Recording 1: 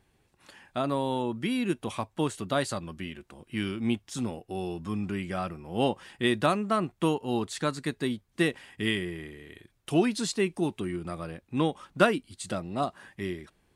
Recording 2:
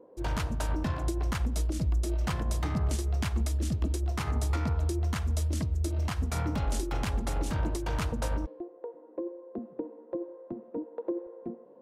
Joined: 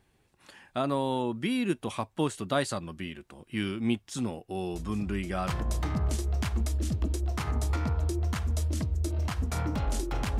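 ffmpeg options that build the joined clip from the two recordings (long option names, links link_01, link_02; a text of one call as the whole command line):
ffmpeg -i cue0.wav -i cue1.wav -filter_complex "[1:a]asplit=2[link_01][link_02];[0:a]apad=whole_dur=10.39,atrim=end=10.39,atrim=end=5.482[link_03];[link_02]atrim=start=2.278:end=7.19[link_04];[link_01]atrim=start=1.54:end=2.28,asetpts=PTS-STARTPTS,volume=-11.5dB,afade=type=in:duration=0.004:curve=hsin,afade=type=out:start_time=0.736:duration=0.004:curve=hsin,adelay=4740[link_05];[link_03][link_04]acrossfade=duration=0.004:curve1=hsin:curve2=hsin[link_06];[link_06][link_05]amix=inputs=2:normalize=0" out.wav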